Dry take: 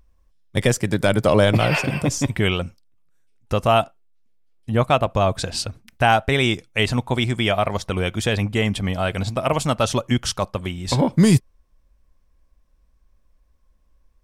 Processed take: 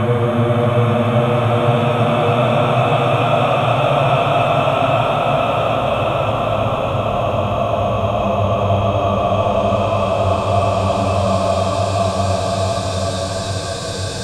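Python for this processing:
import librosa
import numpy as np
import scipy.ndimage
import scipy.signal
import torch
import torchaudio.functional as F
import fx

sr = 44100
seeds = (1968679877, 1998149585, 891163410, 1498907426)

y = fx.paulstretch(x, sr, seeds[0], factor=21.0, window_s=0.5, from_s=4.75)
y = fx.hpss(y, sr, part='harmonic', gain_db=4)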